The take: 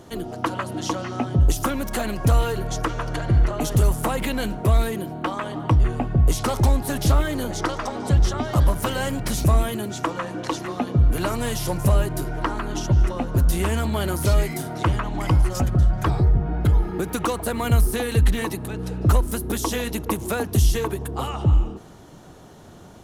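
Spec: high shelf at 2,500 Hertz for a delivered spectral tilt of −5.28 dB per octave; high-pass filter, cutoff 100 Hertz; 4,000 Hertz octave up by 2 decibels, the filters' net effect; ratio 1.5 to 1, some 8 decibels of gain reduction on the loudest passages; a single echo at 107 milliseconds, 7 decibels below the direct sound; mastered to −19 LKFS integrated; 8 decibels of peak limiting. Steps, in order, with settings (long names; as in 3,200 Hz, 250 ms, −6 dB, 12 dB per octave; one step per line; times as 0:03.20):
high-pass filter 100 Hz
high-shelf EQ 2,500 Hz −6 dB
parametric band 4,000 Hz +8 dB
downward compressor 1.5 to 1, threshold −39 dBFS
brickwall limiter −23 dBFS
single-tap delay 107 ms −7 dB
level +14 dB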